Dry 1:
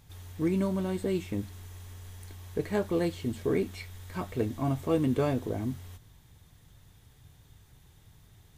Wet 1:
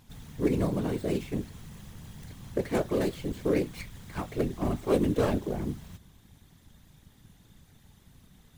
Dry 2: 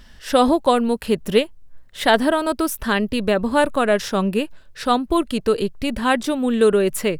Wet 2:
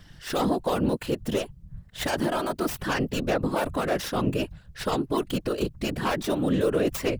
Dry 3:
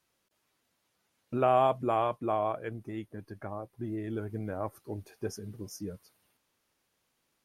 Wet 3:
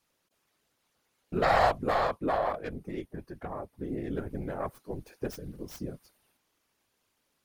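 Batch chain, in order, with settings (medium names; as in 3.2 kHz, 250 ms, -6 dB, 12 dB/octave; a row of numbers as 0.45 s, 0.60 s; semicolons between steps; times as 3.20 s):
tracing distortion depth 0.21 ms; peak limiter -13.5 dBFS; whisper effect; peak normalisation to -12 dBFS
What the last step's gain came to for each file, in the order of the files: +0.5 dB, -3.5 dB, +1.0 dB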